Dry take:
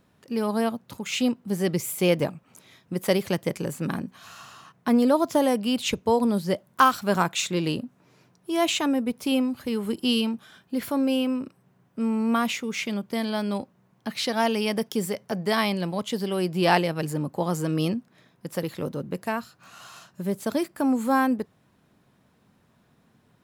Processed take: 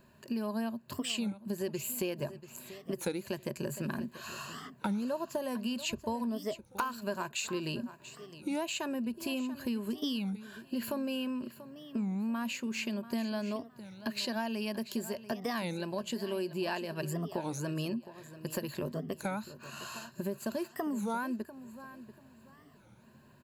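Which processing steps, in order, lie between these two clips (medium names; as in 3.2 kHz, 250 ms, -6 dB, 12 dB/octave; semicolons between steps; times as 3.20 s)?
rippled EQ curve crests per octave 1.4, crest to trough 11 dB; compression 6:1, threshold -33 dBFS, peak gain reduction 20.5 dB; feedback delay 687 ms, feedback 25%, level -14.5 dB; warped record 33 1/3 rpm, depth 250 cents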